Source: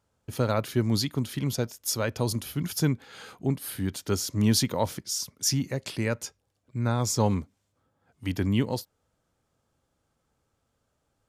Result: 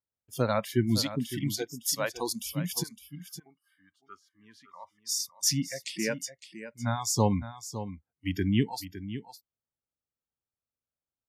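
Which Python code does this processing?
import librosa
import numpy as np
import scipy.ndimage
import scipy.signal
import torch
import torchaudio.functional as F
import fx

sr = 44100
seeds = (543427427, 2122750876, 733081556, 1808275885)

p1 = fx.noise_reduce_blind(x, sr, reduce_db=26)
p2 = fx.bandpass_q(p1, sr, hz=1200.0, q=11.0, at=(2.82, 5.04), fade=0.02)
y = p2 + fx.echo_single(p2, sr, ms=560, db=-12.0, dry=0)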